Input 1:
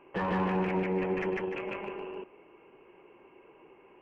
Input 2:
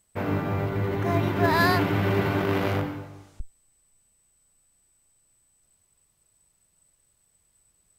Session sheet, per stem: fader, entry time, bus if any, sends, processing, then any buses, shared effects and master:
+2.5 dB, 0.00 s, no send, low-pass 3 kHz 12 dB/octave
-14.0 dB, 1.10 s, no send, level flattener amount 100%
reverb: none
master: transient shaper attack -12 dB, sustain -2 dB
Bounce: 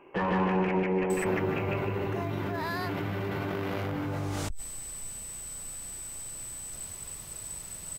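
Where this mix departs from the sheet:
stem 1: missing low-pass 3 kHz 12 dB/octave; master: missing transient shaper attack -12 dB, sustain -2 dB

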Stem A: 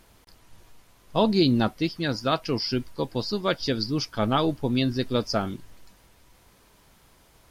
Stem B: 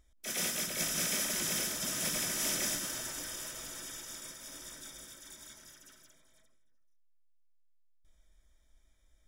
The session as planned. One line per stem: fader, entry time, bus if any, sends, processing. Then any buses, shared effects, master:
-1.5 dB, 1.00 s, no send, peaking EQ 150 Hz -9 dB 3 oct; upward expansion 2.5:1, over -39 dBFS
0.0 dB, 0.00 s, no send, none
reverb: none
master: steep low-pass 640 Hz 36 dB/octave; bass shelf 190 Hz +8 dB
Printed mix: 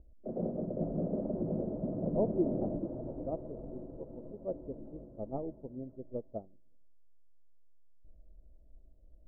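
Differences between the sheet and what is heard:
stem B 0.0 dB -> +9.5 dB; master: missing bass shelf 190 Hz +8 dB

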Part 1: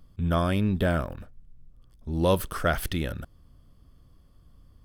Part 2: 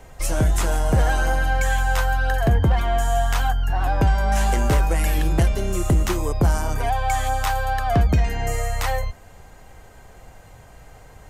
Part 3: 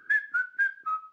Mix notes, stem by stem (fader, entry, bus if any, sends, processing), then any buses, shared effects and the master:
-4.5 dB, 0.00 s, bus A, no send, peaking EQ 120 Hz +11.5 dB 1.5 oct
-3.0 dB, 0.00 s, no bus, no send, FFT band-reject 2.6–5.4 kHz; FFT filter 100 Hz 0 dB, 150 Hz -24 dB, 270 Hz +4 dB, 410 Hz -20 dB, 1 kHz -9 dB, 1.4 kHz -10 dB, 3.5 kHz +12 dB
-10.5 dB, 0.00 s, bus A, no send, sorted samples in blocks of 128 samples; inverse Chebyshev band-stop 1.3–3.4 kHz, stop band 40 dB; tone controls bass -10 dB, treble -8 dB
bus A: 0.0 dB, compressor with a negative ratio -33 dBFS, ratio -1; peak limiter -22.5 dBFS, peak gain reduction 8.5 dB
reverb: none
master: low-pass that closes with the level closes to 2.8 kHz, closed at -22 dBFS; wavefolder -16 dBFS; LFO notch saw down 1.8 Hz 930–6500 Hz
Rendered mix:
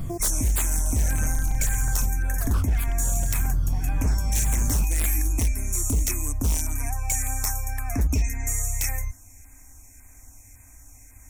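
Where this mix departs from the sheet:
stem 1 -4.5 dB -> +7.0 dB; master: missing low-pass that closes with the level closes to 2.8 kHz, closed at -22 dBFS

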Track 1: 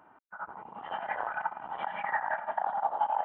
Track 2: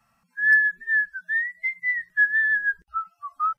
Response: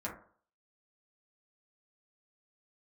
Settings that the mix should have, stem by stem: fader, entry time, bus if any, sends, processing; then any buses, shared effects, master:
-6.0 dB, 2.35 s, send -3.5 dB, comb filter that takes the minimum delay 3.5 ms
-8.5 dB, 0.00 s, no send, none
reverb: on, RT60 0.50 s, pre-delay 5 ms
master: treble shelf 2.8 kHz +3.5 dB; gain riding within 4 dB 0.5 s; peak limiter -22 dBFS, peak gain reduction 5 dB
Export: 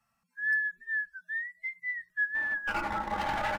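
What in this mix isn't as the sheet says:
stem 1 -6.0 dB -> +5.0 dB; stem 2 -8.5 dB -> -15.0 dB

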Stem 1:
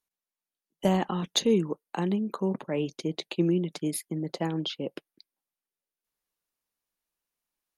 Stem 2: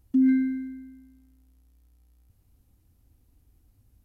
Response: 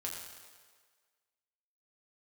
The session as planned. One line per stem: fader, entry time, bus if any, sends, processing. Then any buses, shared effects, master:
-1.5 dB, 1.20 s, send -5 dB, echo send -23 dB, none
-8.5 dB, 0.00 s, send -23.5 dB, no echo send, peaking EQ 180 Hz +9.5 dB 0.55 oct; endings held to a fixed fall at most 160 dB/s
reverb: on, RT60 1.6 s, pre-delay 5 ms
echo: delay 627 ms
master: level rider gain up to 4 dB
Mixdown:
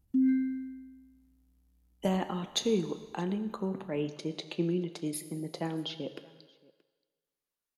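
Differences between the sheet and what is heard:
stem 1 -1.5 dB -> -7.5 dB; master: missing level rider gain up to 4 dB

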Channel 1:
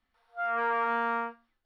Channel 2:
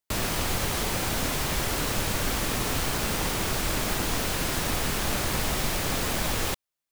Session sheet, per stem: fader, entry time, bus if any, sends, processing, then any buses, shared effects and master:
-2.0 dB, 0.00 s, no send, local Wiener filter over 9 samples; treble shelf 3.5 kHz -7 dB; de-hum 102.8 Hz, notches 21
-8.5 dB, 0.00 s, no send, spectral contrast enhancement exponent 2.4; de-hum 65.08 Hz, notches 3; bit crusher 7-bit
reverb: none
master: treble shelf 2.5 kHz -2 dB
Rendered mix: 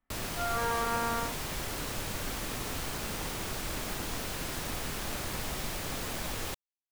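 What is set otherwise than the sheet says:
stem 2: missing spectral contrast enhancement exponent 2.4; master: missing treble shelf 2.5 kHz -2 dB

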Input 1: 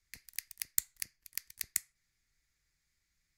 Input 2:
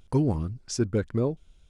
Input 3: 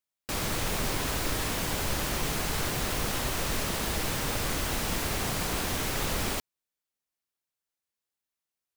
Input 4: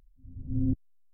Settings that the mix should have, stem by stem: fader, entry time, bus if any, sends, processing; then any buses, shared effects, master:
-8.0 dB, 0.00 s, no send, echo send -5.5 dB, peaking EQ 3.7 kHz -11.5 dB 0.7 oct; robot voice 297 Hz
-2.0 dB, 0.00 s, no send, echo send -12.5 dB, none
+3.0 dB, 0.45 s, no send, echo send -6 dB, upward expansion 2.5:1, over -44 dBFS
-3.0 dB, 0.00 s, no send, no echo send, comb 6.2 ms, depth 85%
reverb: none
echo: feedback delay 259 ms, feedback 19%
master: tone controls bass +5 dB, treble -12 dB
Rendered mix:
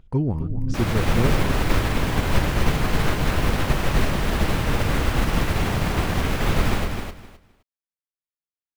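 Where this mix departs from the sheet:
stem 1 -8.0 dB -> -17.5 dB; stem 3 +3.0 dB -> +11.0 dB

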